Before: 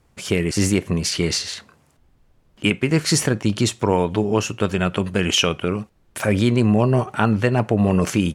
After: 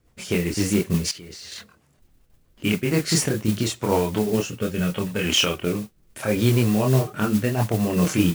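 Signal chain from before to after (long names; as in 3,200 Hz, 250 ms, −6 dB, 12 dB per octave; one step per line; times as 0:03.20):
multi-voice chorus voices 4, 0.44 Hz, delay 26 ms, depth 3.4 ms
rotating-speaker cabinet horn 8 Hz, later 0.75 Hz, at 0:02.50
noise that follows the level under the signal 17 dB
0:01.11–0:01.52: output level in coarse steps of 21 dB
0:04.50–0:05.24: notch comb filter 340 Hz
level +2 dB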